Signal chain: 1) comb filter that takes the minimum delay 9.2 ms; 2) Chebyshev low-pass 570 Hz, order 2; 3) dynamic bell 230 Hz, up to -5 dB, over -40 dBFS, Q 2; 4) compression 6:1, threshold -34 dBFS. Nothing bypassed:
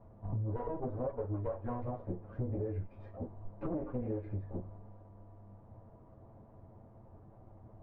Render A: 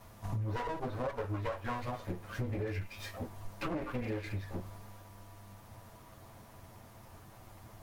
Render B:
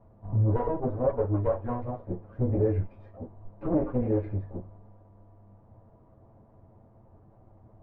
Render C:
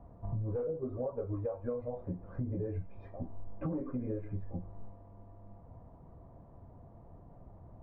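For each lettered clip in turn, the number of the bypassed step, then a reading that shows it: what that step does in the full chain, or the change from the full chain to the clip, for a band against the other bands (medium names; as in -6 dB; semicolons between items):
2, 2 kHz band +18.0 dB; 4, mean gain reduction 4.0 dB; 1, 1 kHz band -6.0 dB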